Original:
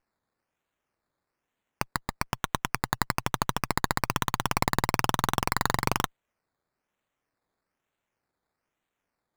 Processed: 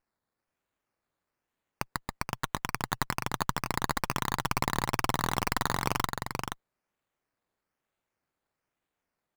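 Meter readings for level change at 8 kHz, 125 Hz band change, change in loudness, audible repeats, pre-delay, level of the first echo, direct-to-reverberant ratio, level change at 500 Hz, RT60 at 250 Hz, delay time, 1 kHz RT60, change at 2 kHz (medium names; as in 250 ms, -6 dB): -2.5 dB, -2.5 dB, -3.0 dB, 1, no reverb, -4.5 dB, no reverb, -3.0 dB, no reverb, 477 ms, no reverb, -2.5 dB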